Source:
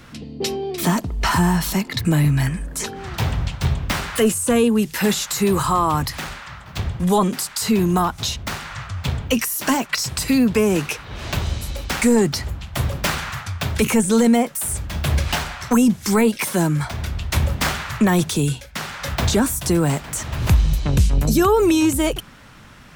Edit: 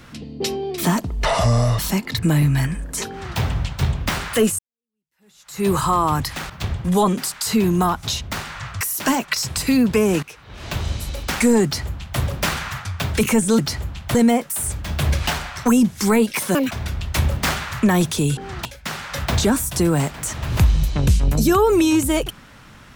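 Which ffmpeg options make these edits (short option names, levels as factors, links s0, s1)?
-filter_complex "[0:a]asplit=13[s0][s1][s2][s3][s4][s5][s6][s7][s8][s9][s10][s11][s12];[s0]atrim=end=1.254[s13];[s1]atrim=start=1.25:end=1.61,asetpts=PTS-STARTPTS,asetrate=29547,aresample=44100[s14];[s2]atrim=start=1.606:end=4.41,asetpts=PTS-STARTPTS,afade=t=out:st=2.8:d=0.004:c=hsin[s15];[s3]atrim=start=4.41:end=6.322,asetpts=PTS-STARTPTS,afade=t=in:d=1.08:c=exp[s16];[s4]atrim=start=6.648:end=8.962[s17];[s5]atrim=start=9.418:end=10.84,asetpts=PTS-STARTPTS,afade=t=out:st=1.418:d=0.004:c=hsin:silence=0.11885[s18];[s6]atrim=start=10.84:end=14.202,asetpts=PTS-STARTPTS,afade=t=in:d=0.71:silence=0.11885[s19];[s7]atrim=start=12.248:end=12.812[s20];[s8]atrim=start=14.198:end=16.604[s21];[s9]atrim=start=16.6:end=16.89,asetpts=PTS-STARTPTS,asetrate=78057,aresample=44100,atrim=end_sample=7225,asetpts=PTS-STARTPTS[s22];[s10]atrim=start=16.886:end=18.552[s23];[s11]atrim=start=2.918:end=3.202[s24];[s12]atrim=start=18.548[s25];[s13][s14]acrossfade=d=0.004:c1=hsin:c2=hsin[s26];[s15][s16]concat=n=2:v=0:a=1[s27];[s26][s27]acrossfade=d=0.004:c1=hsin:c2=hsin[s28];[s28][s17]acrossfade=d=0.004:c1=hsin:c2=hsin[s29];[s18][s19]concat=n=2:v=0:a=1[s30];[s29][s30]acrossfade=d=0.004:c1=hsin:c2=hsin[s31];[s31][s20]acrossfade=d=0.004:c1=hsin:c2=hsin[s32];[s32][s21]acrossfade=d=0.004:c1=hsin:c2=hsin[s33];[s33][s22]acrossfade=d=0.004:c1=hsin:c2=hsin[s34];[s34][s23]acrossfade=d=0.004:c1=hsin:c2=hsin[s35];[s35][s24]acrossfade=d=0.004:c1=hsin:c2=hsin[s36];[s36][s25]acrossfade=d=0.004:c1=hsin:c2=hsin"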